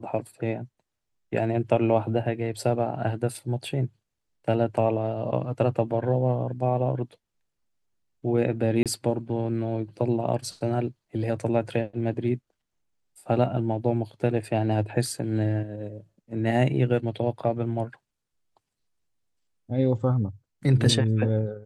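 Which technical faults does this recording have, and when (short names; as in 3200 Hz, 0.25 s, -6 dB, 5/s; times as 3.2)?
8.83–8.86 gap 27 ms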